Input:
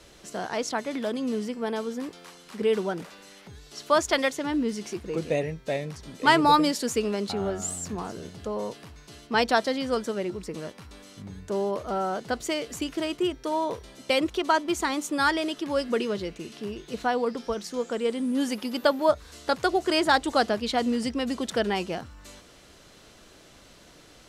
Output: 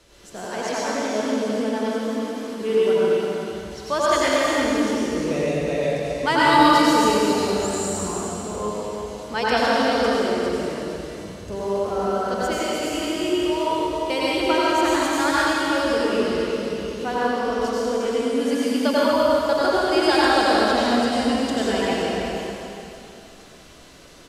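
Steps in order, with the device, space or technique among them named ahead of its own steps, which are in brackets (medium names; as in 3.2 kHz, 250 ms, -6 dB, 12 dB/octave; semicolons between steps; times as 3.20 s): cave (delay 353 ms -9 dB; reverberation RT60 2.8 s, pre-delay 80 ms, DRR -8.5 dB); trim -3.5 dB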